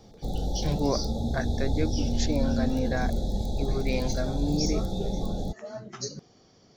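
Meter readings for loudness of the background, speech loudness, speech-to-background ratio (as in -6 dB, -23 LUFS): -31.0 LUFS, -32.0 LUFS, -1.0 dB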